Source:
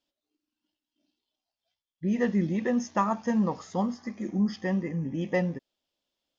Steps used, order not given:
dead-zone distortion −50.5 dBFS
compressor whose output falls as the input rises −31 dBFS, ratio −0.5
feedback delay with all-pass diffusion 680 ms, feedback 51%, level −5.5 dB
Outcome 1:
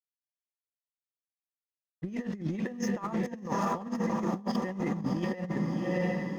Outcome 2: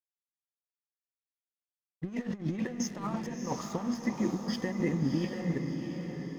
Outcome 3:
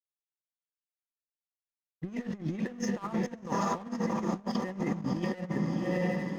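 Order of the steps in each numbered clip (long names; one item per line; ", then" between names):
dead-zone distortion, then feedback delay with all-pass diffusion, then compressor whose output falls as the input rises
compressor whose output falls as the input rises, then dead-zone distortion, then feedback delay with all-pass diffusion
feedback delay with all-pass diffusion, then compressor whose output falls as the input rises, then dead-zone distortion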